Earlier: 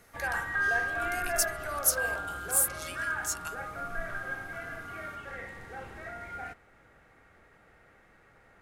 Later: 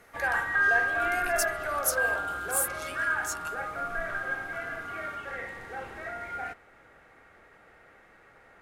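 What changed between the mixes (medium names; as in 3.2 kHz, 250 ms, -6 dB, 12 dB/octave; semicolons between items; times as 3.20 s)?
background +4.5 dB; master: add tone controls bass -7 dB, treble -3 dB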